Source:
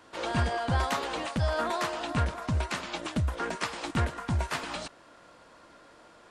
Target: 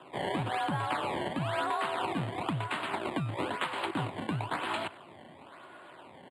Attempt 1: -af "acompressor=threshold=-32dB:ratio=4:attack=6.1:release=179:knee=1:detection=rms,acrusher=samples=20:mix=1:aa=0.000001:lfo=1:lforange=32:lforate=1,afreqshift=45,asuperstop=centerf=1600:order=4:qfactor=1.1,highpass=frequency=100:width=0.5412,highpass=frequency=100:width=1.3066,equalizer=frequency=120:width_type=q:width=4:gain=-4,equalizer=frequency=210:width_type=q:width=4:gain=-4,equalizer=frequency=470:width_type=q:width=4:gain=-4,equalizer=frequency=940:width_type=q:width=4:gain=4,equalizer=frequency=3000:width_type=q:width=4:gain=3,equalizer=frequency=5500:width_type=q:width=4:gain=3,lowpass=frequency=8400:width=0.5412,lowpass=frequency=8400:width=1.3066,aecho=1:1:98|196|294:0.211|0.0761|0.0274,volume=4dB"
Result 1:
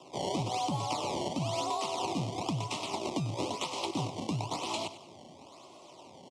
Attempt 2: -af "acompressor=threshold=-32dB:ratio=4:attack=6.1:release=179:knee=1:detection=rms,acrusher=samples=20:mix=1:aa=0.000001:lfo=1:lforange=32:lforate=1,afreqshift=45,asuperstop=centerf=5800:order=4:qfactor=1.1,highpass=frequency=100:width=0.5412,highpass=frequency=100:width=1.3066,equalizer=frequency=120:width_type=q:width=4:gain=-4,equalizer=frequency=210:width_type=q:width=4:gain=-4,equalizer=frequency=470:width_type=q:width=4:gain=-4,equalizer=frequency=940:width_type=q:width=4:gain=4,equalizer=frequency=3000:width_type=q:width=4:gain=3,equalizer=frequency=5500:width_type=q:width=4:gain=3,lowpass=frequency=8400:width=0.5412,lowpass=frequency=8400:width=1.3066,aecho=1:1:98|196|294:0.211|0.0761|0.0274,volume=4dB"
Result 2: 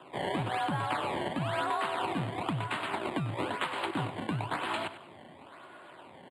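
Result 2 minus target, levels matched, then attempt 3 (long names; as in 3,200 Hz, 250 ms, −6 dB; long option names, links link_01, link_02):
echo-to-direct +8 dB
-af "acompressor=threshold=-32dB:ratio=4:attack=6.1:release=179:knee=1:detection=rms,acrusher=samples=20:mix=1:aa=0.000001:lfo=1:lforange=32:lforate=1,afreqshift=45,asuperstop=centerf=5800:order=4:qfactor=1.1,highpass=frequency=100:width=0.5412,highpass=frequency=100:width=1.3066,equalizer=frequency=120:width_type=q:width=4:gain=-4,equalizer=frequency=210:width_type=q:width=4:gain=-4,equalizer=frequency=470:width_type=q:width=4:gain=-4,equalizer=frequency=940:width_type=q:width=4:gain=4,equalizer=frequency=3000:width_type=q:width=4:gain=3,equalizer=frequency=5500:width_type=q:width=4:gain=3,lowpass=frequency=8400:width=0.5412,lowpass=frequency=8400:width=1.3066,aecho=1:1:98|196|294:0.0841|0.0303|0.0109,volume=4dB"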